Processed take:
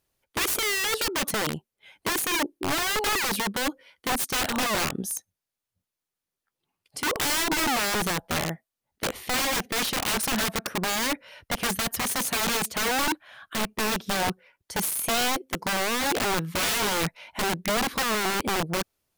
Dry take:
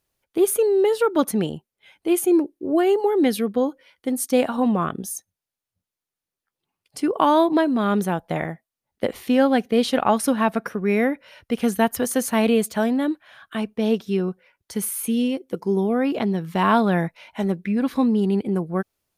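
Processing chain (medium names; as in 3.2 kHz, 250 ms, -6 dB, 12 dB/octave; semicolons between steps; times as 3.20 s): integer overflow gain 20.5 dB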